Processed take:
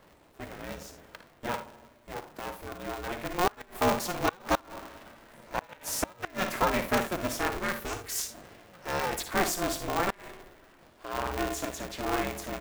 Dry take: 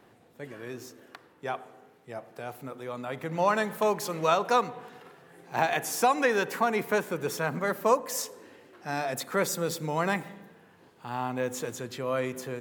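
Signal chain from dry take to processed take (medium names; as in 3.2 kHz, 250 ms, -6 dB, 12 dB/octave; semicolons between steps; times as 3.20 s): early reflections 56 ms -9.5 dB, 78 ms -15 dB; time-frequency box 7.62–8.34 s, 430–1200 Hz -18 dB; inverted gate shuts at -13 dBFS, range -28 dB; dynamic bell 140 Hz, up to -6 dB, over -49 dBFS, Q 1.3; polarity switched at an audio rate 180 Hz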